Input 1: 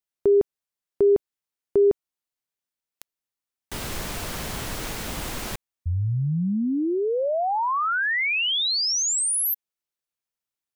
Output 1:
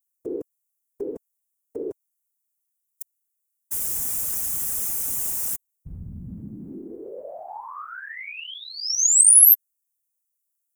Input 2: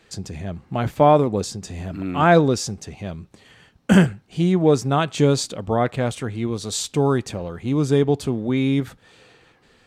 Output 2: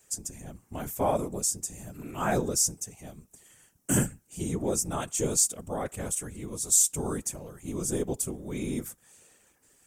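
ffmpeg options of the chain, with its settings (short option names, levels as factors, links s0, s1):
-af "aexciter=amount=15.9:drive=4.6:freq=6200,afftfilt=real='hypot(re,im)*cos(2*PI*random(0))':imag='hypot(re,im)*sin(2*PI*random(1))':win_size=512:overlap=0.75,volume=0.447"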